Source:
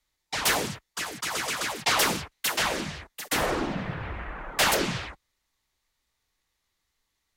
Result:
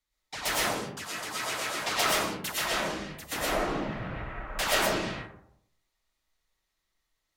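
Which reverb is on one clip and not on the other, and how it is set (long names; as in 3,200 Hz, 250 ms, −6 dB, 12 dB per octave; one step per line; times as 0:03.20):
comb and all-pass reverb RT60 0.71 s, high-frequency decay 0.4×, pre-delay 75 ms, DRR −5.5 dB
level −8.5 dB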